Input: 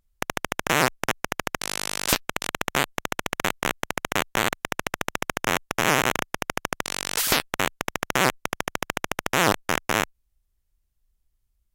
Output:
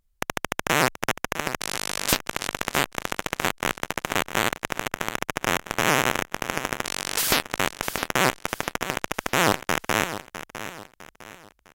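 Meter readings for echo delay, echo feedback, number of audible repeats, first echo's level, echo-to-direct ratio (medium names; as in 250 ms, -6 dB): 655 ms, 37%, 3, -12.0 dB, -11.5 dB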